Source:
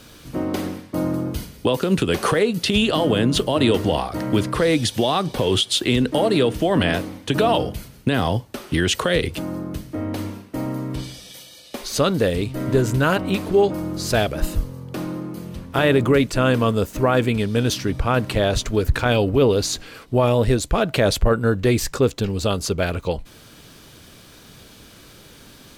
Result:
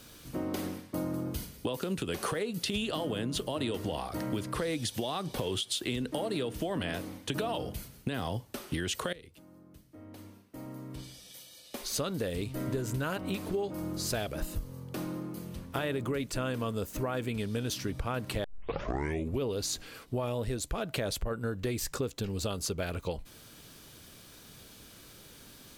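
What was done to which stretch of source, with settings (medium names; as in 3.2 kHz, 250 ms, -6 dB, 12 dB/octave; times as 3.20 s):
9.13–11.97 s: fade in quadratic, from -20.5 dB
18.44 s: tape start 0.97 s
whole clip: treble shelf 7.1 kHz +7.5 dB; compression, threshold -21 dBFS; trim -8.5 dB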